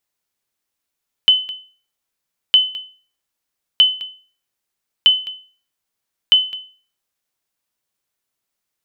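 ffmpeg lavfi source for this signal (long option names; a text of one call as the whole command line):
ffmpeg -f lavfi -i "aevalsrc='0.668*(sin(2*PI*3030*mod(t,1.26))*exp(-6.91*mod(t,1.26)/0.4)+0.133*sin(2*PI*3030*max(mod(t,1.26)-0.21,0))*exp(-6.91*max(mod(t,1.26)-0.21,0)/0.4))':duration=6.3:sample_rate=44100" out.wav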